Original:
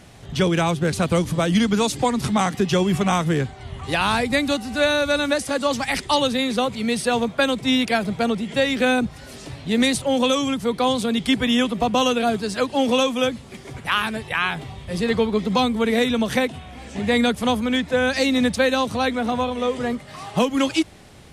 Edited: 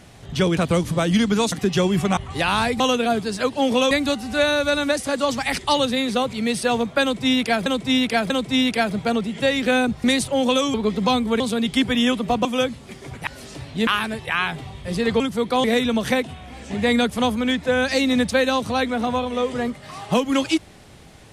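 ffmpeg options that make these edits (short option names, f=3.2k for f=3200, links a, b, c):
-filter_complex "[0:a]asplit=16[a][b][c][d][e][f][g][h][i][j][k][l][m][n][o][p];[a]atrim=end=0.572[q];[b]atrim=start=0.978:end=1.932[r];[c]atrim=start=2.478:end=3.132[s];[d]atrim=start=3.698:end=4.332[t];[e]atrim=start=11.968:end=13.082[u];[f]atrim=start=4.328:end=8.082[v];[g]atrim=start=7.438:end=8.082[w];[h]atrim=start=7.438:end=9.182[x];[i]atrim=start=9.778:end=10.482[y];[j]atrim=start=15.228:end=15.892[z];[k]atrim=start=10.918:end=11.972[aa];[l]atrim=start=13.078:end=13.902[ab];[m]atrim=start=9.178:end=9.782[ac];[n]atrim=start=13.898:end=15.232[ad];[o]atrim=start=10.478:end=10.922[ae];[p]atrim=start=15.888[af];[q][r]acrossfade=d=0.004:c1=hsin:c2=hsin[ag];[ag][s]acrossfade=d=0.004:c1=hsin:c2=hsin[ah];[ah][t]acrossfade=d=0.004:c1=hsin:c2=hsin[ai];[ai][u]acrossfade=d=0.004:c1=hsin:c2=hsin[aj];[aj][v]acrossfade=d=0.004:c1=hsin:c2=hsin[ak];[ak][w]acrossfade=d=0.004:c1=hsin:c2=hsin[al];[al][x]acrossfade=d=0.004:c1=hsin:c2=hsin[am];[am][y]acrossfade=d=0.004:c1=hsin:c2=hsin[an];[an][z]acrossfade=d=0.004:c1=hsin:c2=hsin[ao];[ao][aa]acrossfade=d=0.004:c1=hsin:c2=hsin[ap];[ap][ab]acrossfade=d=0.004:c1=hsin:c2=hsin[aq];[aq][ac]acrossfade=d=0.004:c1=hsin:c2=hsin[ar];[ar][ad]acrossfade=d=0.004:c1=hsin:c2=hsin[as];[as][ae]acrossfade=d=0.004:c1=hsin:c2=hsin[at];[at][af]acrossfade=d=0.004:c1=hsin:c2=hsin"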